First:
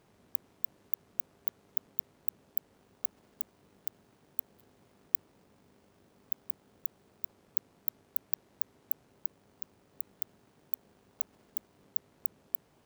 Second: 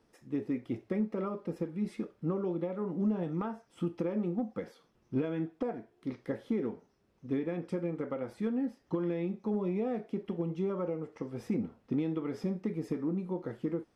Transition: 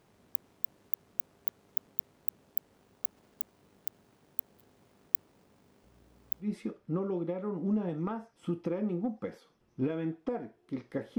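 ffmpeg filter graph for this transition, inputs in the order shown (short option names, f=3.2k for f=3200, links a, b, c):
-filter_complex "[0:a]asettb=1/sr,asplit=3[a][b][c];[a]atrim=end=5.844[d];[b]atrim=start=5.84:end=6.48,asetpts=PTS-STARTPTS,afade=t=in:d=0.004:c=qsin,afade=t=out:st=0.636:d=0.004:c=qsin,aeval=exprs='val(0)+0.000708*(sin(2*PI*60*n/s)+sin(2*PI*2*60*n/s)/2+sin(2*PI*3*60*n/s)/3+sin(2*PI*4*60*n/s)/4+sin(2*PI*5*60*n/s)/5)':c=same[e];[c]atrim=start=6.476[f];[d][e]acrossfade=d=0.004:c1=hsin:c2=qsin[g];[g][f]acrossfade=d=0.004:c1=qsin:c2=hsin,apad=whole_dur=11.18,atrim=end=11.18,atrim=end=6.48,asetpts=PTS-STARTPTS[h];[1:a]atrim=start=1.72:end=6.52,asetpts=PTS-STARTPTS[i];[h][i]acrossfade=d=0.1:c1=tri:c2=tri"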